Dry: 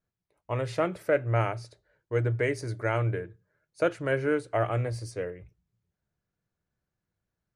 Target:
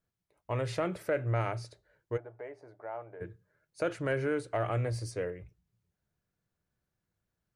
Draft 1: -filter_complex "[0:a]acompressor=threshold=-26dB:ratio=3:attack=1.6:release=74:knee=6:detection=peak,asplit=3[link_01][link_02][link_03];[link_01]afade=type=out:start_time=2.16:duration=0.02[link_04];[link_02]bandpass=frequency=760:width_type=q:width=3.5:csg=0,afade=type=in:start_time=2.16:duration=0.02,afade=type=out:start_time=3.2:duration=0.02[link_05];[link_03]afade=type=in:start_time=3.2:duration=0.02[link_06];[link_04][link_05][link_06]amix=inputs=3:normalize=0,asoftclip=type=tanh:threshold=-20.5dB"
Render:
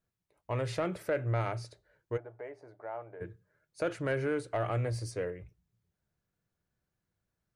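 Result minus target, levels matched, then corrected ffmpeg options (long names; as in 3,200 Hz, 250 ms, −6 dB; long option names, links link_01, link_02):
soft clipping: distortion +12 dB
-filter_complex "[0:a]acompressor=threshold=-26dB:ratio=3:attack=1.6:release=74:knee=6:detection=peak,asplit=3[link_01][link_02][link_03];[link_01]afade=type=out:start_time=2.16:duration=0.02[link_04];[link_02]bandpass=frequency=760:width_type=q:width=3.5:csg=0,afade=type=in:start_time=2.16:duration=0.02,afade=type=out:start_time=3.2:duration=0.02[link_05];[link_03]afade=type=in:start_time=3.2:duration=0.02[link_06];[link_04][link_05][link_06]amix=inputs=3:normalize=0,asoftclip=type=tanh:threshold=-14dB"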